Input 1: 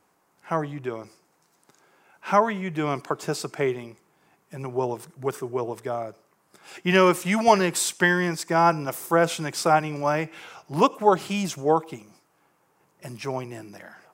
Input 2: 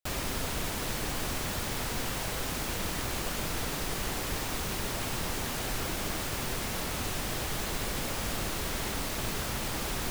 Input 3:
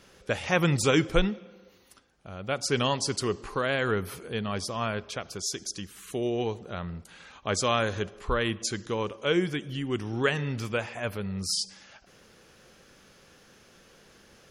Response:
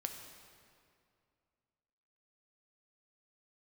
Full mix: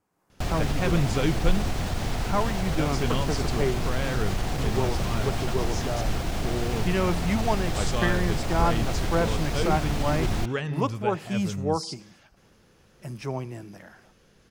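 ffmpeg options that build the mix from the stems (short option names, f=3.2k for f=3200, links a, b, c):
-filter_complex "[0:a]dynaudnorm=f=110:g=3:m=8.5dB,volume=-13.5dB[a];[1:a]equalizer=f=720:t=o:w=0.31:g=7.5,alimiter=level_in=1.5dB:limit=-24dB:level=0:latency=1:release=64,volume=-1.5dB,adelay=350,volume=2.5dB[b];[2:a]adelay=300,volume=-6.5dB[c];[a][b][c]amix=inputs=3:normalize=0,lowshelf=f=220:g=11.5,acrossover=split=7400[d][e];[e]acompressor=threshold=-49dB:ratio=4:attack=1:release=60[f];[d][f]amix=inputs=2:normalize=0"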